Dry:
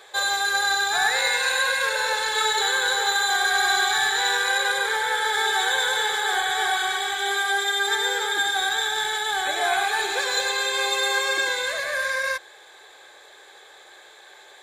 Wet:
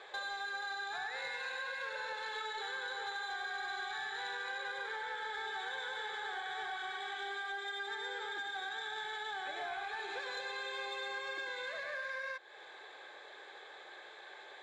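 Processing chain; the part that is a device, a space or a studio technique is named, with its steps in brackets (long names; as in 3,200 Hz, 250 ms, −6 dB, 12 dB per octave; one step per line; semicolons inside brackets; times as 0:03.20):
AM radio (band-pass filter 130–3,400 Hz; downward compressor 4 to 1, threshold −37 dBFS, peak gain reduction 16 dB; soft clipping −27.5 dBFS, distortion −24 dB)
level −3 dB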